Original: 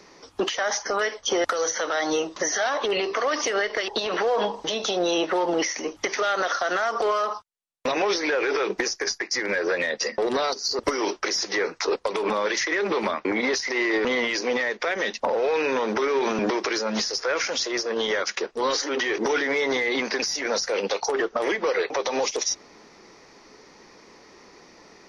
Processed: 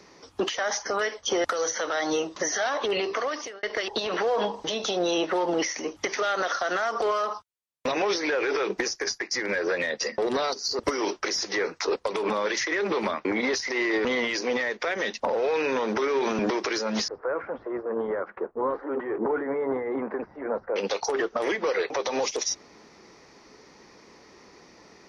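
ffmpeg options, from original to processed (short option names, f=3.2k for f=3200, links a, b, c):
-filter_complex "[0:a]asettb=1/sr,asplit=3[a][b][c];[a]atrim=end=17.084[d];[b]atrim=start=17.08:end=20.76,asetpts=PTS-STARTPTS,afade=t=in:d=0.004:c=qsin,afade=t=out:st=3.676:d=0.004:c=qsin,lowpass=f=1.3k:w=0.5412,lowpass=f=1.3k:w=1.3066[e];[c]atrim=start=20.756[f];[d][e]acrossfade=d=0.004:c1=hsin:c2=qsin[g];[g][f]acrossfade=d=0.004:c1=qsin:c2=hsin,asplit=2[h][i];[h]atrim=end=3.63,asetpts=PTS-STARTPTS,afade=t=out:st=3.15:d=0.48[j];[i]atrim=start=3.63,asetpts=PTS-STARTPTS,afade=t=in:d=0.004:c=hsin[k];[j][k]concat=n=2:v=0:a=1,highpass=f=100:p=1,lowshelf=f=130:g=10.5,volume=-2.5dB"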